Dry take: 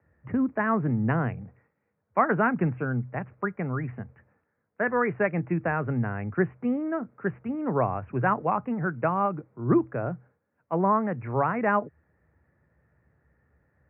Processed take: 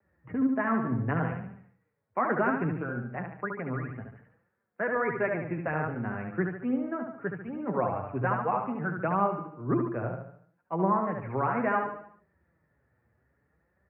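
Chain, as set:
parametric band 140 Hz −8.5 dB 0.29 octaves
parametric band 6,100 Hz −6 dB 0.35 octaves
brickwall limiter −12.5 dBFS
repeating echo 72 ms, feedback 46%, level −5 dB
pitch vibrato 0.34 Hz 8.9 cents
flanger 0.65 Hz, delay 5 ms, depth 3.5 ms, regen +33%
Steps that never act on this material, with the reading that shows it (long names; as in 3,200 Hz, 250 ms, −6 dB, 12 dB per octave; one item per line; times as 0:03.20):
parametric band 6,100 Hz: nothing at its input above 2,300 Hz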